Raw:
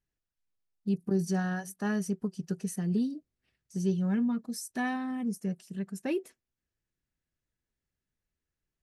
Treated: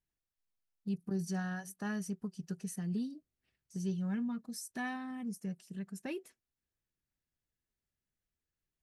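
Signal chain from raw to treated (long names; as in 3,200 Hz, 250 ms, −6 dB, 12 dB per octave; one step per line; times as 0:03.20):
dynamic equaliser 400 Hz, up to −6 dB, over −41 dBFS, Q 0.84
level −4.5 dB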